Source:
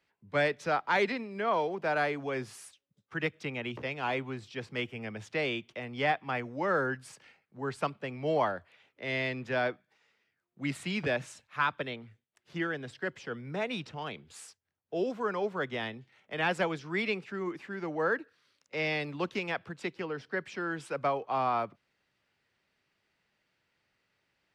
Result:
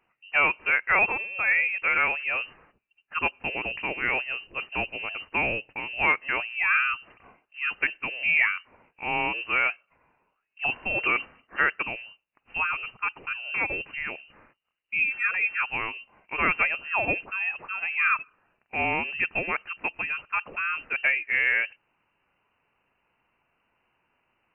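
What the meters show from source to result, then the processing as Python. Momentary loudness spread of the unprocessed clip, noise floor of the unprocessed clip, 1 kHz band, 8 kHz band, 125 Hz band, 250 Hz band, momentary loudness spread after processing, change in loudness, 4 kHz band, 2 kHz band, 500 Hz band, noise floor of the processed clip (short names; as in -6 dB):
11 LU, -81 dBFS, +2.5 dB, under -25 dB, -6.0 dB, -5.0 dB, 11 LU, +7.5 dB, +2.5 dB, +11.0 dB, -5.0 dB, -76 dBFS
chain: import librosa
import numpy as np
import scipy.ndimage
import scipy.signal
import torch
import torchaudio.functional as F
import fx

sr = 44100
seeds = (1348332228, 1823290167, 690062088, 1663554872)

y = fx.freq_invert(x, sr, carrier_hz=2900)
y = y * 10.0 ** (5.5 / 20.0)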